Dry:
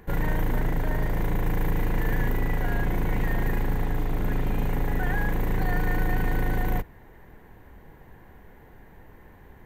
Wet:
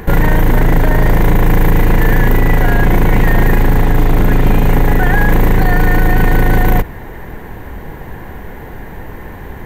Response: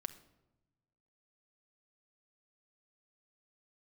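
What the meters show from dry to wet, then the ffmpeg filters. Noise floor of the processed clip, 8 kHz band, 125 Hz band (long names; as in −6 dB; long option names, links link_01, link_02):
−30 dBFS, +15.5 dB, +15.0 dB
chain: -af "alimiter=level_in=22dB:limit=-1dB:release=50:level=0:latency=1,volume=-1dB"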